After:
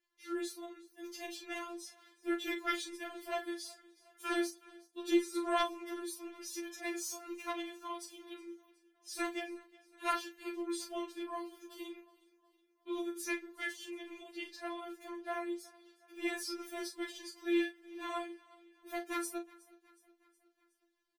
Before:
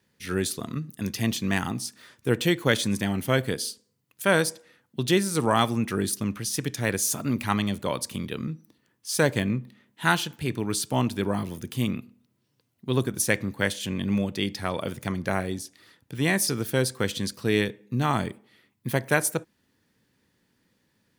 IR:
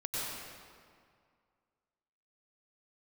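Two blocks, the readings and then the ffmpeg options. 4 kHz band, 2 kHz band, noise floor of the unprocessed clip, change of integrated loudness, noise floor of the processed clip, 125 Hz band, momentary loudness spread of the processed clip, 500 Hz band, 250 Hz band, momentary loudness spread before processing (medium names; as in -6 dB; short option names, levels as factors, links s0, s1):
-13.5 dB, -13.0 dB, -72 dBFS, -13.0 dB, -76 dBFS, under -40 dB, 15 LU, -12.5 dB, -12.0 dB, 10 LU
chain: -filter_complex "[0:a]equalizer=f=14000:w=2.1:g=5,aeval=exprs='val(0)*sin(2*PI*25*n/s)':c=same,highshelf=f=8900:g=-11,asplit=2[s0][s1];[s1]adelay=35,volume=0.447[s2];[s0][s2]amix=inputs=2:normalize=0,aeval=exprs='0.631*(cos(1*acos(clip(val(0)/0.631,-1,1)))-cos(1*PI/2))+0.00794*(cos(2*acos(clip(val(0)/0.631,-1,1)))-cos(2*PI/2))+0.112*(cos(3*acos(clip(val(0)/0.631,-1,1)))-cos(3*PI/2))':c=same,asplit=2[s3][s4];[s4]aecho=0:1:367|734|1101|1468:0.075|0.0397|0.0211|0.0112[s5];[s3][s5]amix=inputs=2:normalize=0,afftfilt=real='re*4*eq(mod(b,16),0)':imag='im*4*eq(mod(b,16),0)':win_size=2048:overlap=0.75,volume=0.891"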